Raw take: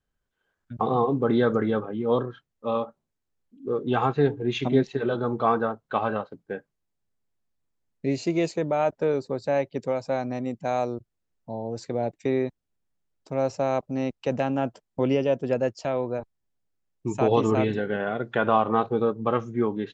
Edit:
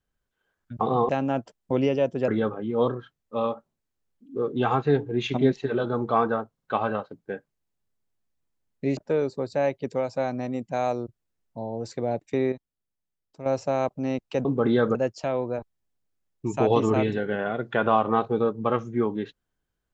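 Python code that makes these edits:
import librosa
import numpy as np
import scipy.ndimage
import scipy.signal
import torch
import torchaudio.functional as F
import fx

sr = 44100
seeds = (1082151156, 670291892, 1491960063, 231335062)

y = fx.edit(x, sr, fx.swap(start_s=1.09, length_s=0.5, other_s=14.37, other_length_s=1.19),
    fx.stutter(start_s=5.84, slice_s=0.05, count=3),
    fx.cut(start_s=8.18, length_s=0.71),
    fx.clip_gain(start_s=12.44, length_s=0.94, db=-8.0), tone=tone)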